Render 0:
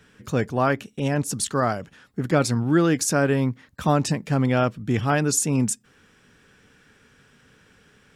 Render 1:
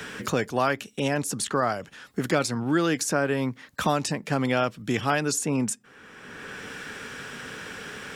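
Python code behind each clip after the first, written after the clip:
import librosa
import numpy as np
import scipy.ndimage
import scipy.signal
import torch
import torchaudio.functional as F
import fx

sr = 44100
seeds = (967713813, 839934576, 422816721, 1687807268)

y = fx.low_shelf(x, sr, hz=220.0, db=-11.5)
y = fx.band_squash(y, sr, depth_pct=70)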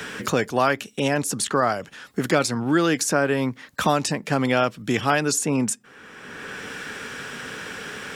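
y = fx.low_shelf(x, sr, hz=130.0, db=-4.0)
y = y * librosa.db_to_amplitude(4.0)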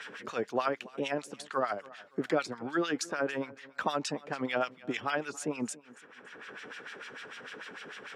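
y = fx.filter_lfo_bandpass(x, sr, shape='sine', hz=6.7, low_hz=350.0, high_hz=3700.0, q=1.0)
y = fx.echo_feedback(y, sr, ms=281, feedback_pct=32, wet_db=-21.0)
y = y * librosa.db_to_amplitude(-6.0)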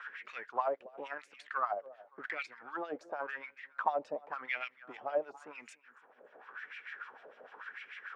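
y = np.where(x < 0.0, 10.0 ** (-3.0 / 20.0) * x, x)
y = fx.wah_lfo(y, sr, hz=0.92, low_hz=570.0, high_hz=2300.0, q=4.6)
y = y * librosa.db_to_amplitude(6.5)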